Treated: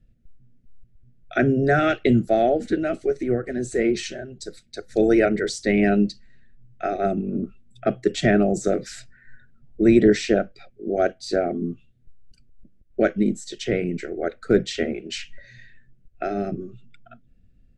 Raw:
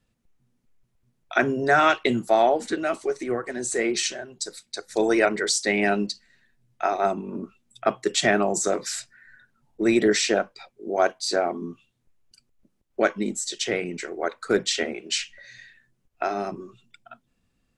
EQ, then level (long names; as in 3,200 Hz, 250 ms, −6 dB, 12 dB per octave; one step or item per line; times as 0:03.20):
Butterworth band-reject 990 Hz, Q 1.5
RIAA equalisation playback
high-shelf EQ 9,800 Hz +4 dB
0.0 dB